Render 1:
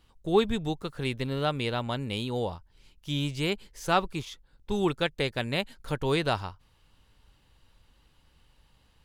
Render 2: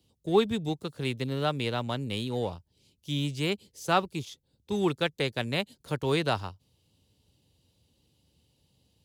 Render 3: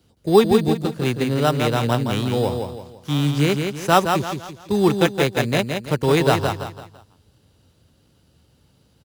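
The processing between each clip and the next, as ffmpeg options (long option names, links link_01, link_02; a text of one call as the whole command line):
ffmpeg -i in.wav -filter_complex "[0:a]highpass=frequency=77:width=0.5412,highpass=frequency=77:width=1.3066,acrossover=split=220|680|2900[link_01][link_02][link_03][link_04];[link_03]aeval=exprs='sgn(val(0))*max(abs(val(0))-0.00335,0)':channel_layout=same[link_05];[link_01][link_02][link_05][link_04]amix=inputs=4:normalize=0" out.wav
ffmpeg -i in.wav -filter_complex "[0:a]aecho=1:1:168|336|504|672:0.531|0.196|0.0727|0.0269,asplit=2[link_01][link_02];[link_02]acrusher=samples=10:mix=1:aa=0.000001,volume=-3dB[link_03];[link_01][link_03]amix=inputs=2:normalize=0,volume=5dB" out.wav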